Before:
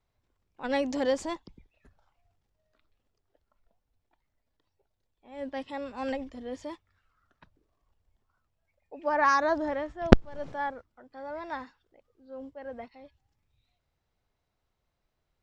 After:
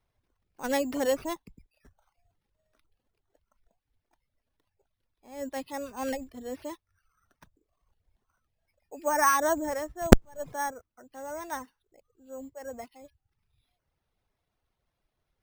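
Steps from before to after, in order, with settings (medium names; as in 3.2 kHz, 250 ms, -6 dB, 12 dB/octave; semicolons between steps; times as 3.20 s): careless resampling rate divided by 6×, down none, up hold; reverb removal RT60 0.61 s; trim +1 dB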